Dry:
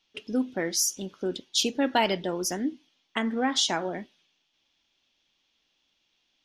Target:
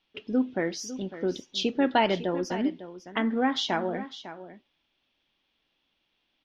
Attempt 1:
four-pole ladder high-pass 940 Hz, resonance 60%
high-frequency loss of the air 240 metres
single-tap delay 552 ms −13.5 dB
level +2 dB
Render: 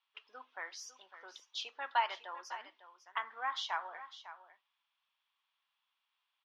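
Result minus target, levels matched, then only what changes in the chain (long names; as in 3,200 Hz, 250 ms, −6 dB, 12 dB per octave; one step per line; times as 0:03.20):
1,000 Hz band +5.0 dB
remove: four-pole ladder high-pass 940 Hz, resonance 60%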